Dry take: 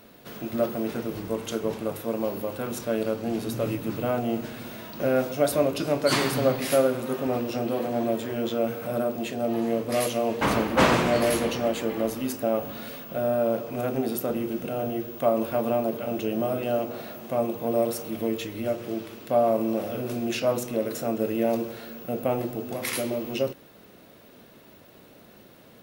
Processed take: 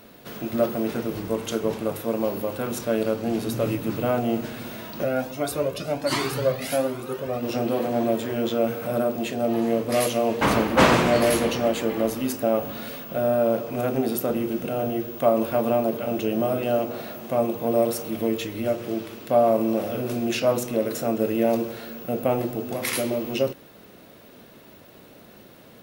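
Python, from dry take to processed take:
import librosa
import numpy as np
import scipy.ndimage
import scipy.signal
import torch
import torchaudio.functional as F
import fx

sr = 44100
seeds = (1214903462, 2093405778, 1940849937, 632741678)

y = fx.comb_cascade(x, sr, direction='rising', hz=1.3, at=(5.03, 7.42), fade=0.02)
y = y * 10.0 ** (3.0 / 20.0)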